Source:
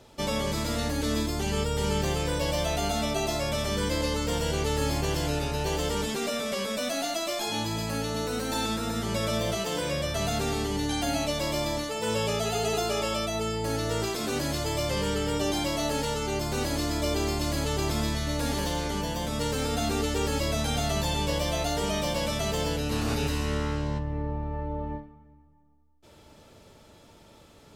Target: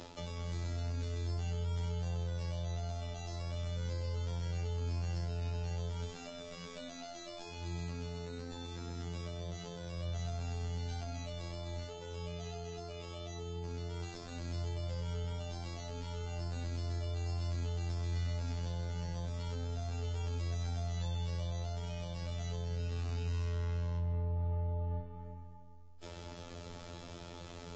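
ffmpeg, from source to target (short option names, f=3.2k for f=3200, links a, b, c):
-filter_complex "[0:a]areverse,acompressor=threshold=-37dB:ratio=10,areverse,afftfilt=real='hypot(re,im)*cos(PI*b)':imag='0':win_size=2048:overlap=0.75,acrossover=split=130[a][b];[b]acompressor=threshold=-56dB:ratio=10[c];[a][c]amix=inputs=2:normalize=0,volume=12dB" -ar 16000 -c:a libvorbis -b:a 32k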